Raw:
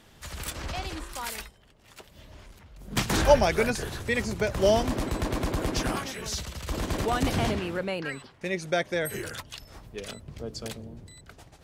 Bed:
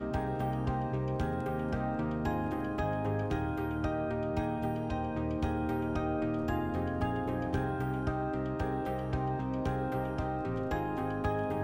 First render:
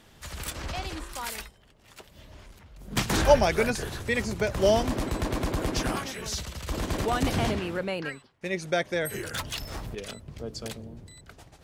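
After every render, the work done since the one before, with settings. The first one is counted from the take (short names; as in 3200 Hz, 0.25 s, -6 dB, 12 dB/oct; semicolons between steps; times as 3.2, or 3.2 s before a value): 8.09–8.53 upward expander, over -53 dBFS; 9.34–9.95 sample leveller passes 3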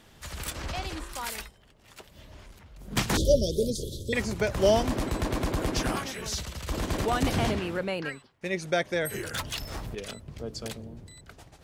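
3.17–4.13 Chebyshev band-stop 570–3300 Hz, order 5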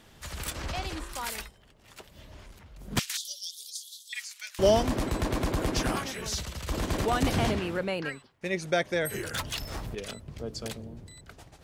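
2.99–4.59 Bessel high-pass 2900 Hz, order 4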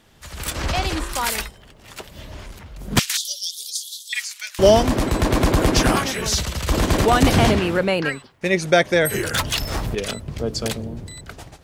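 AGC gain up to 12 dB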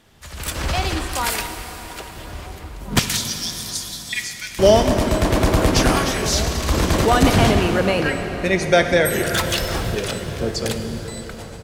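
outdoor echo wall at 290 m, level -16 dB; plate-style reverb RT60 5 s, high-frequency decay 0.75×, DRR 5.5 dB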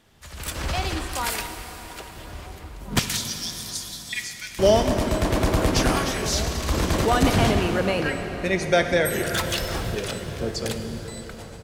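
gain -4.5 dB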